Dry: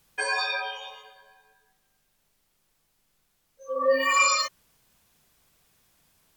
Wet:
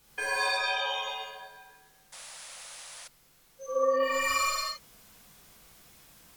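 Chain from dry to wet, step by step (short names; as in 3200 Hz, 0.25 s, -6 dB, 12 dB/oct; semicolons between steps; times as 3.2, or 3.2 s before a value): tracing distortion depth 0.032 ms; compressor 16:1, threshold -34 dBFS, peak gain reduction 18.5 dB; reverb, pre-delay 3 ms, DRR -9 dB; painted sound noise, 2.12–3.08, 490–11000 Hz -46 dBFS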